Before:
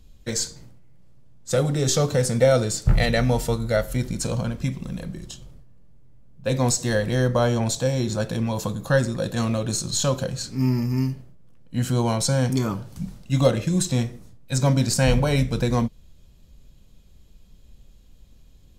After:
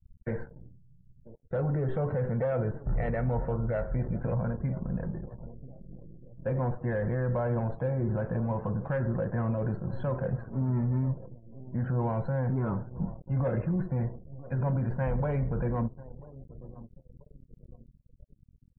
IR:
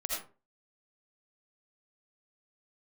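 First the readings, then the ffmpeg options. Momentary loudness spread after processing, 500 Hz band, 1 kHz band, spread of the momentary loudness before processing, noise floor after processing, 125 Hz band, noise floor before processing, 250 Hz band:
18 LU, −8.5 dB, −7.5 dB, 11 LU, −61 dBFS, −6.0 dB, −51 dBFS, −8.0 dB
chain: -filter_complex "[0:a]lowpass=frequency=1600:width=0.5412,lowpass=frequency=1600:width=1.3066,bandreject=frequency=1200:width=7,asoftclip=type=tanh:threshold=-12.5dB,equalizer=frequency=280:width_type=o:width=0.66:gain=-6.5,alimiter=limit=-23.5dB:level=0:latency=1:release=20,acontrast=35,asplit=2[link_01][link_02];[link_02]adelay=989,lowpass=frequency=1100:poles=1,volume=-15dB,asplit=2[link_03][link_04];[link_04]adelay=989,lowpass=frequency=1100:poles=1,volume=0.45,asplit=2[link_05][link_06];[link_06]adelay=989,lowpass=frequency=1100:poles=1,volume=0.45,asplit=2[link_07][link_08];[link_08]adelay=989,lowpass=frequency=1100:poles=1,volume=0.45[link_09];[link_01][link_03][link_05][link_07][link_09]amix=inputs=5:normalize=0,aeval=exprs='sgn(val(0))*max(abs(val(0))-0.0075,0)':channel_layout=same,afftdn=noise_reduction=35:noise_floor=-48,volume=-4dB"

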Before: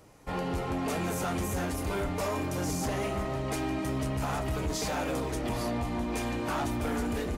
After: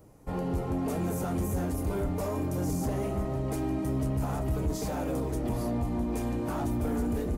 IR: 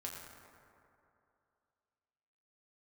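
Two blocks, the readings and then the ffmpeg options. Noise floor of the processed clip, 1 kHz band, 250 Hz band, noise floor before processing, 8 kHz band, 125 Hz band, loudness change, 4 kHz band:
−34 dBFS, −4.0 dB, +2.0 dB, −34 dBFS, −4.5 dB, +3.0 dB, +0.5 dB, −9.5 dB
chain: -af "equalizer=frequency=2900:width=0.32:gain=-14,volume=3.5dB"

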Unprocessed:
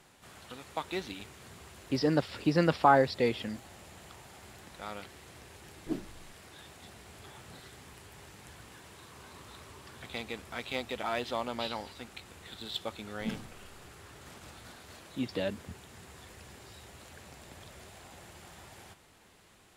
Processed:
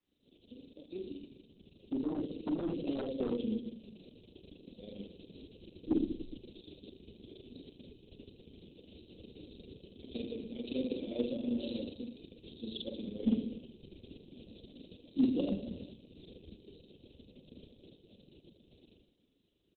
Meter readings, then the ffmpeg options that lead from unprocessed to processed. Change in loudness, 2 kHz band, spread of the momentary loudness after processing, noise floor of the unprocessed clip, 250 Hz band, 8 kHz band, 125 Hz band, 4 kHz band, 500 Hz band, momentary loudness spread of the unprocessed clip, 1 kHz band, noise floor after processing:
−5.0 dB, −21.0 dB, 22 LU, −61 dBFS, +1.0 dB, below −30 dB, −8.5 dB, −8.5 dB, −7.0 dB, 22 LU, −23.5 dB, −70 dBFS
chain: -filter_complex "[0:a]acrossover=split=3300[link_01][link_02];[link_01]asoftclip=type=tanh:threshold=-20dB[link_03];[link_02]acompressor=threshold=-59dB:ratio=8[link_04];[link_03][link_04]amix=inputs=2:normalize=0,asuperstop=centerf=1200:order=8:qfactor=0.57,tremolo=f=25:d=0.667,lowpass=frequency=6900:width=0.5412,lowpass=frequency=6900:width=1.3066,asplit=2[link_05][link_06];[link_06]aecho=0:1:50|112.5|190.6|288.3|410.4:0.631|0.398|0.251|0.158|0.1[link_07];[link_05][link_07]amix=inputs=2:normalize=0,aeval=exprs='0.0355*(abs(mod(val(0)/0.0355+3,4)-2)-1)':channel_layout=same,agate=range=-33dB:threshold=-57dB:ratio=3:detection=peak,acrusher=bits=6:mode=log:mix=0:aa=0.000001,equalizer=frequency=125:width_type=o:width=1:gain=-11,equalizer=frequency=250:width_type=o:width=1:gain=9,equalizer=frequency=1000:width_type=o:width=1:gain=-5,equalizer=frequency=2000:width_type=o:width=1:gain=-12,dynaudnorm=framelen=420:gausssize=17:maxgain=8dB,volume=-3.5dB" -ar 48000 -c:a libopus -b:a 6k

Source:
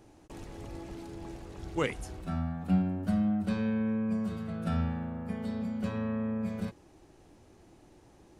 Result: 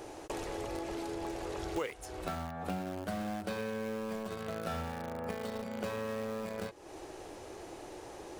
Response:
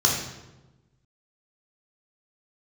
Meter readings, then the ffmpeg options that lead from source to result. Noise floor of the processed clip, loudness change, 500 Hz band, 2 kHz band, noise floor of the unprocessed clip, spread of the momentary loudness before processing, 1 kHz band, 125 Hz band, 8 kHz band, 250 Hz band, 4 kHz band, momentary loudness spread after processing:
−49 dBFS, −6.5 dB, +2.5 dB, 0.0 dB, −59 dBFS, 15 LU, +2.5 dB, −10.5 dB, can't be measured, −9.5 dB, +2.5 dB, 10 LU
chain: -filter_complex "[0:a]lowshelf=frequency=310:width_type=q:width=1.5:gain=-10,asplit=2[link_01][link_02];[link_02]acrusher=bits=5:mix=0:aa=0.000001,volume=-8.5dB[link_03];[link_01][link_03]amix=inputs=2:normalize=0,acompressor=threshold=-49dB:ratio=6,volume=13.5dB"

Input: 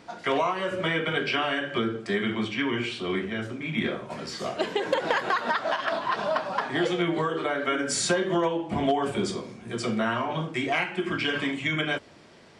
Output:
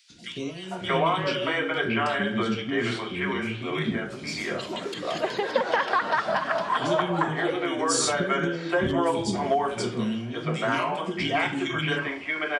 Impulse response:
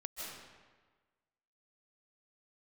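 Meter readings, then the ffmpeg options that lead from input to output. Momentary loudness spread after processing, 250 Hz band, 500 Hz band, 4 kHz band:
7 LU, +0.5 dB, +1.0 dB, +0.5 dB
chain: -filter_complex "[0:a]acrossover=split=340|2700[link_01][link_02][link_03];[link_01]adelay=100[link_04];[link_02]adelay=630[link_05];[link_04][link_05][link_03]amix=inputs=3:normalize=0,volume=2.5dB"

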